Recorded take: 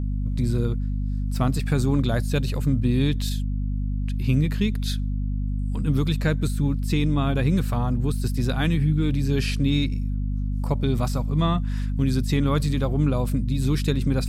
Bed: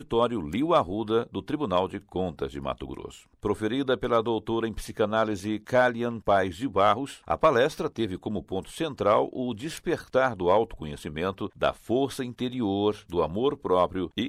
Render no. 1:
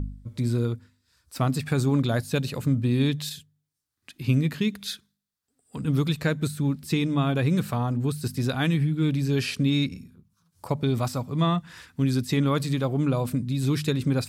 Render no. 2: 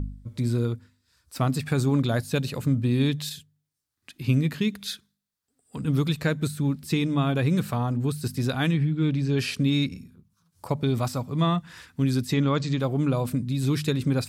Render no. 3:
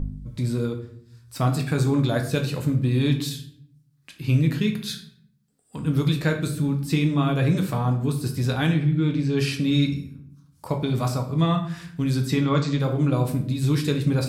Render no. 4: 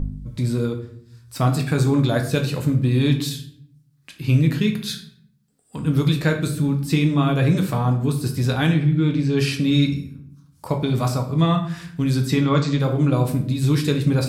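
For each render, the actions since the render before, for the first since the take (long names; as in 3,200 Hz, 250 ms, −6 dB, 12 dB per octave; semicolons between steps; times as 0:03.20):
hum removal 50 Hz, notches 5
0:08.71–0:09.39: high-frequency loss of the air 80 metres; 0:12.33–0:12.80: Butterworth low-pass 7,500 Hz 72 dB per octave
rectangular room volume 97 cubic metres, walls mixed, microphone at 0.55 metres
level +3 dB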